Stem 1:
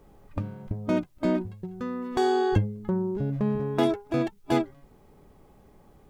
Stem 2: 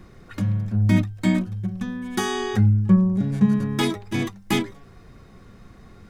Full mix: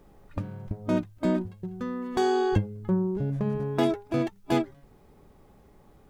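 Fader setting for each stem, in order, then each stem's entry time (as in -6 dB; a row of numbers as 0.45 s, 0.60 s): -1.0 dB, -18.5 dB; 0.00 s, 0.00 s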